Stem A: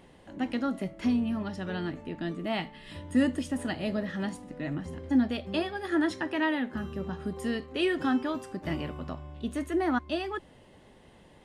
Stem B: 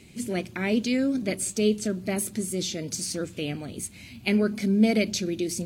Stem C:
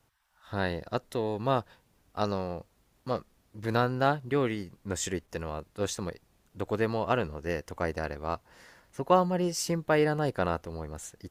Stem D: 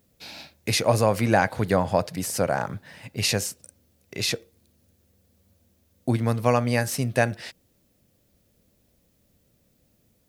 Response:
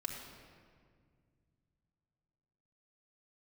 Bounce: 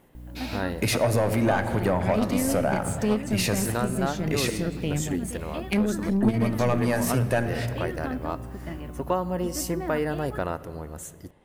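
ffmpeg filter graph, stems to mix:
-filter_complex "[0:a]alimiter=limit=-20.5dB:level=0:latency=1:release=458,volume=-3.5dB[a];[1:a]equalizer=f=160:t=o:w=0.74:g=9.5,dynaudnorm=f=190:g=5:m=8.5dB,aeval=exprs='0.668*(cos(1*acos(clip(val(0)/0.668,-1,1)))-cos(1*PI/2))+0.237*(cos(2*acos(clip(val(0)/0.668,-1,1)))-cos(2*PI/2))+0.0944*(cos(3*acos(clip(val(0)/0.668,-1,1)))-cos(3*PI/2))+0.106*(cos(4*acos(clip(val(0)/0.668,-1,1)))-cos(4*PI/2))':c=same,adelay=1450,volume=-4dB[b];[2:a]highshelf=f=7.8k:g=11.5,volume=0dB,asplit=2[c][d];[d]volume=-12dB[e];[3:a]aeval=exprs='val(0)+0.00501*(sin(2*PI*60*n/s)+sin(2*PI*2*60*n/s)/2+sin(2*PI*3*60*n/s)/3+sin(2*PI*4*60*n/s)/4+sin(2*PI*5*60*n/s)/5)':c=same,asoftclip=type=tanh:threshold=-15.5dB,adelay=150,volume=3dB,asplit=2[f][g];[g]volume=-3dB[h];[4:a]atrim=start_sample=2205[i];[e][h]amix=inputs=2:normalize=0[j];[j][i]afir=irnorm=-1:irlink=0[k];[a][b][c][f][k]amix=inputs=5:normalize=0,equalizer=f=4.9k:t=o:w=1.6:g=-7,acompressor=threshold=-24dB:ratio=2"

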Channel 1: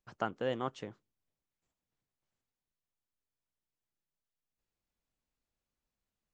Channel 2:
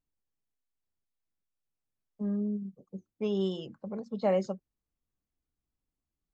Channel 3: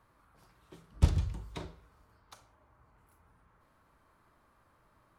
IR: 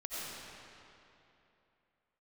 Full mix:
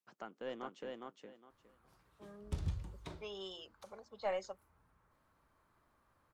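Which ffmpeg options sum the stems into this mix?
-filter_complex "[0:a]alimiter=limit=-24dB:level=0:latency=1:release=351,highpass=f=180:w=0.5412,highpass=f=180:w=1.3066,volume=-7.5dB,asplit=2[a][b];[b]volume=-3dB[c];[1:a]highpass=820,volume=-3dB[d];[2:a]alimiter=limit=-21dB:level=0:latency=1:release=141,adelay=1500,volume=-6.5dB[e];[c]aecho=0:1:411|822|1233:1|0.2|0.04[f];[a][d][e][f]amix=inputs=4:normalize=0,aeval=exprs='0.106*(cos(1*acos(clip(val(0)/0.106,-1,1)))-cos(1*PI/2))+0.0266*(cos(2*acos(clip(val(0)/0.106,-1,1)))-cos(2*PI/2))':c=same"

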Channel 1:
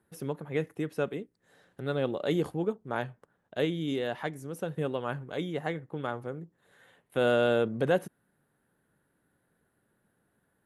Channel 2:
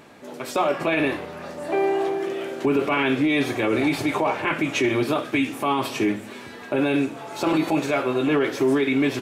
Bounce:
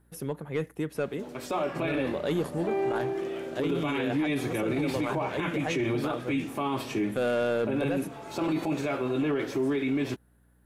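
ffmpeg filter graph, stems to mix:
-filter_complex "[0:a]highshelf=f=9.9k:g=7.5,asoftclip=type=tanh:threshold=-20.5dB,aeval=exprs='val(0)+0.000631*(sin(2*PI*60*n/s)+sin(2*PI*2*60*n/s)/2+sin(2*PI*3*60*n/s)/3+sin(2*PI*4*60*n/s)/4+sin(2*PI*5*60*n/s)/5)':c=same,volume=2dB[a];[1:a]lowshelf=f=300:g=8,adelay=950,volume=-8dB[b];[a][b]amix=inputs=2:normalize=0,alimiter=limit=-20.5dB:level=0:latency=1:release=16"

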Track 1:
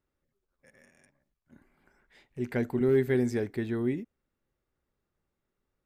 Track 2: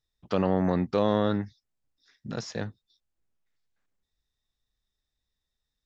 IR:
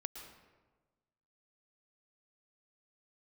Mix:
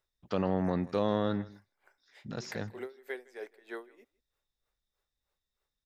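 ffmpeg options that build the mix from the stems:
-filter_complex "[0:a]highpass=f=480:w=0.5412,highpass=f=480:w=1.3066,acompressor=threshold=-37dB:ratio=6,aeval=exprs='val(0)*pow(10,-25*(0.5-0.5*cos(2*PI*3.2*n/s))/20)':c=same,volume=3dB,asplit=2[a][b];[b]volume=-23.5dB[c];[1:a]volume=-5dB,asplit=2[d][e];[e]volume=-20dB[f];[c][f]amix=inputs=2:normalize=0,aecho=0:1:159:1[g];[a][d][g]amix=inputs=3:normalize=0"

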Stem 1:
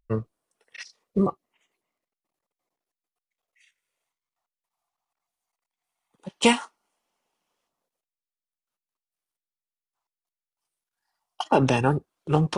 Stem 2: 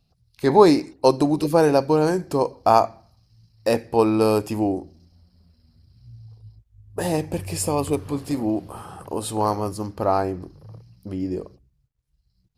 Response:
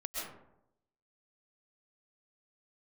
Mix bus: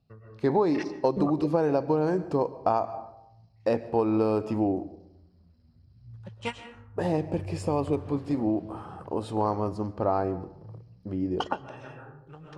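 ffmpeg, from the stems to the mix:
-filter_complex "[0:a]equalizer=f=100:t=o:w=0.67:g=6,equalizer=f=250:t=o:w=0.67:g=-4,equalizer=f=1.6k:t=o:w=0.67:g=9,acompressor=threshold=-24dB:ratio=3,volume=-1.5dB,asplit=2[a][b];[b]volume=-18dB[c];[1:a]highpass=61,highshelf=f=2.6k:g=-12,volume=-2.5dB,asplit=3[d][e][f];[e]volume=-19dB[g];[f]apad=whole_len=554573[h];[a][h]sidechaingate=range=-33dB:threshold=-44dB:ratio=16:detection=peak[i];[2:a]atrim=start_sample=2205[j];[c][g]amix=inputs=2:normalize=0[k];[k][j]afir=irnorm=-1:irlink=0[l];[i][d][l]amix=inputs=3:normalize=0,lowpass=6.1k,acompressor=threshold=-20dB:ratio=6"

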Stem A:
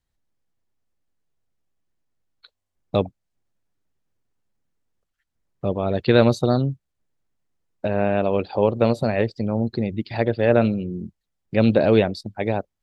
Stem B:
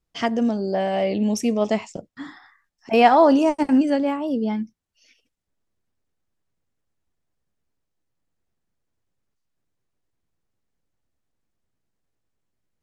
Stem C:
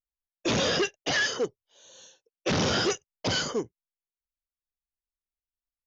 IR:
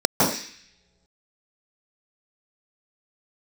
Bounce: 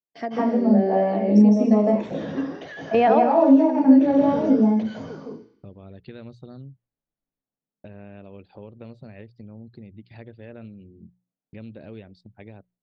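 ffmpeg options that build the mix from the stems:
-filter_complex "[0:a]agate=range=-33dB:threshold=-37dB:ratio=3:detection=peak,equalizer=f=800:t=o:w=2.3:g=-11,volume=-8.5dB,asplit=2[a][b];[1:a]agate=range=-14dB:threshold=-48dB:ratio=16:detection=peak,highpass=140,acompressor=threshold=-21dB:ratio=5,volume=2.5dB,asplit=2[c][d];[d]volume=-22dB[e];[2:a]lowshelf=f=130:g=9,acompressor=threshold=-35dB:ratio=4,adelay=1550,volume=-2.5dB,asplit=2[f][g];[g]volume=-21.5dB[h];[b]apad=whole_len=565476[i];[c][i]sidechaingate=range=-33dB:threshold=-51dB:ratio=16:detection=peak[j];[a][f]amix=inputs=2:normalize=0,acompressor=threshold=-41dB:ratio=2.5,volume=0dB[k];[3:a]atrim=start_sample=2205[l];[e][h]amix=inputs=2:normalize=0[m];[m][l]afir=irnorm=-1:irlink=0[n];[j][k][n]amix=inputs=3:normalize=0,lowpass=2.9k,bandreject=f=60:t=h:w=6,bandreject=f=120:t=h:w=6,bandreject=f=180:t=h:w=6"

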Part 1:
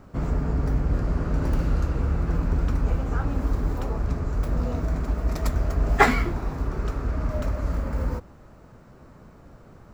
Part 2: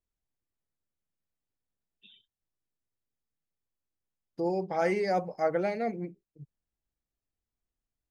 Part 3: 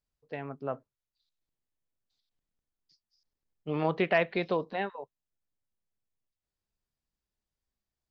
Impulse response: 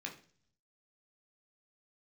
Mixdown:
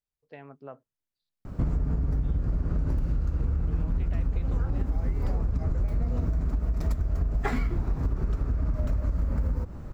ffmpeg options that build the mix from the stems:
-filter_complex "[0:a]lowshelf=f=250:g=12,acompressor=threshold=-15dB:ratio=6,adelay=1450,volume=1dB[a];[1:a]adelay=200,volume=-5.5dB[b];[2:a]volume=-7dB[c];[b][c]amix=inputs=2:normalize=0,acompressor=threshold=-36dB:ratio=6,volume=0dB[d];[a][d]amix=inputs=2:normalize=0,acompressor=threshold=-23dB:ratio=6"

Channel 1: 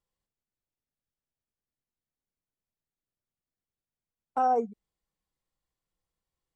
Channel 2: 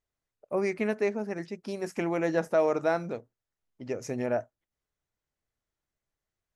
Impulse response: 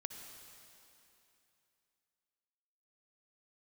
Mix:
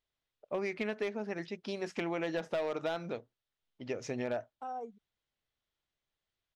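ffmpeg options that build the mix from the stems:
-filter_complex "[0:a]adelay=250,volume=-16dB[a];[1:a]lowpass=5.3k,lowshelf=f=420:g=-3.5,asoftclip=type=hard:threshold=-21dB,volume=-1dB[b];[a][b]amix=inputs=2:normalize=0,equalizer=f=3.4k:w=1.7:g=9,acompressor=threshold=-31dB:ratio=6"

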